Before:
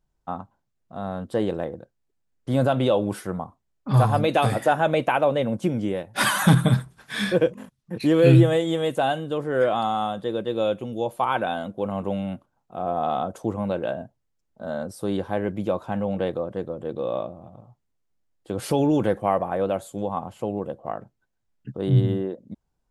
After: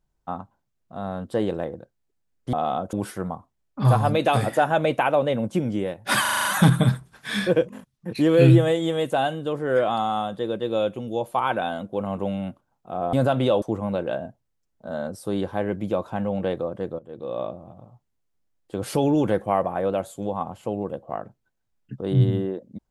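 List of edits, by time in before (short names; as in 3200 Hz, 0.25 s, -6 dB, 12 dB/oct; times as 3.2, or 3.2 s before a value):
2.53–3.02 swap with 12.98–13.38
6.3 stutter 0.04 s, 7 plays
16.75–17.26 fade in, from -16 dB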